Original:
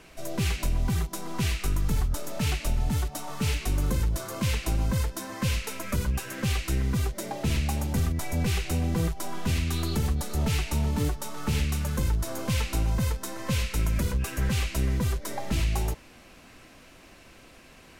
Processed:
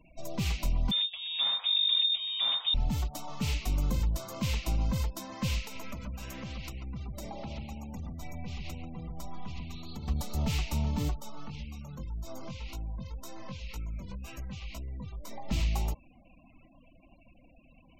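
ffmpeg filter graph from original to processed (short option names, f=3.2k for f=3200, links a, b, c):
-filter_complex "[0:a]asettb=1/sr,asplit=3[a][b][c];[a]atrim=end=0.914[d];[b]atrim=start=0.91:end=2.74,asetpts=PTS-STARTPTS,afade=t=in:d=0.004:c=qsin,afade=t=out:st=1.826:d=0.004:c=qsin,equalizer=f=800:w=1.5:g=-2,lowpass=f=3.1k:t=q:w=0.5098,lowpass=f=3.1k:t=q:w=0.6013,lowpass=f=3.1k:t=q:w=0.9,lowpass=f=3.1k:t=q:w=2.563,afreqshift=-3700[e];[c]atrim=start=2.736[f];[d][e]acrossfade=d=0.004:c1=hsin:c2=qsin[g];[g][f]acrossfade=d=0.004:c1=qsin:c2=hsin,asettb=1/sr,asplit=3[h][i][j];[h]atrim=end=5.614[k];[i]atrim=start=5.61:end=10.08,asetpts=PTS-STARTPTS,afade=t=in:d=0.004:c=qsin,afade=t=out:st=4.466:d=0.004:c=qsin,acompressor=threshold=-32dB:ratio=16:attack=3.2:release=140:knee=1:detection=peak,asplit=2[l][m];[m]adelay=141,lowpass=f=3.1k:p=1,volume=-5dB,asplit=2[n][o];[o]adelay=141,lowpass=f=3.1k:p=1,volume=0.39,asplit=2[p][q];[q]adelay=141,lowpass=f=3.1k:p=1,volume=0.39,asplit=2[r][s];[s]adelay=141,lowpass=f=3.1k:p=1,volume=0.39,asplit=2[t][u];[u]adelay=141,lowpass=f=3.1k:p=1,volume=0.39[v];[l][n][p][r][t][v]amix=inputs=6:normalize=0,atrim=end_sample=197127[w];[j]atrim=start=10.076[x];[k][w]acrossfade=d=0.004:c1=hsin:c2=qsin[y];[y][x]acrossfade=d=0.004:c1=qsin:c2=hsin,asettb=1/sr,asplit=3[z][aa][ab];[z]atrim=end=11.204[ac];[aa]atrim=start=11.2:end=15.49,asetpts=PTS-STARTPTS,afade=t=in:d=0.004:c=qsin,afade=t=out:st=4.286:d=0.004:c=qsin,acompressor=threshold=-29dB:ratio=20:attack=3.2:release=140:knee=1:detection=peak,flanger=delay=17.5:depth=3.8:speed=1.9[ad];[ab]atrim=start=15.486[ae];[ac][ad]acrossfade=d=0.004:c1=hsin:c2=qsin[af];[af][ae]acrossfade=d=0.004:c1=qsin:c2=hsin,equalizer=f=100:t=o:w=0.67:g=-6,equalizer=f=400:t=o:w=0.67:g=-9,equalizer=f=1.6k:t=o:w=0.67:g=-10,equalizer=f=10k:t=o:w=0.67:g=-9,afftfilt=real='re*gte(hypot(re,im),0.00398)':imag='im*gte(hypot(re,im),0.00398)':win_size=1024:overlap=0.75,volume=-1.5dB"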